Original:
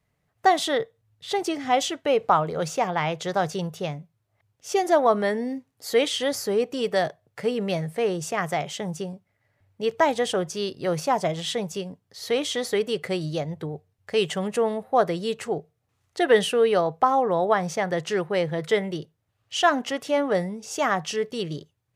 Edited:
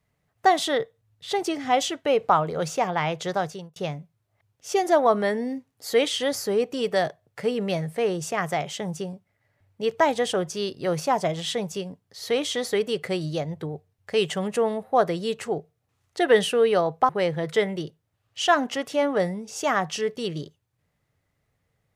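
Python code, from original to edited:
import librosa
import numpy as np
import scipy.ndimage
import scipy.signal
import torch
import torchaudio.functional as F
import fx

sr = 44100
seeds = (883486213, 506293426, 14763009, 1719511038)

y = fx.edit(x, sr, fx.fade_out_span(start_s=3.3, length_s=0.46),
    fx.cut(start_s=17.09, length_s=1.15), tone=tone)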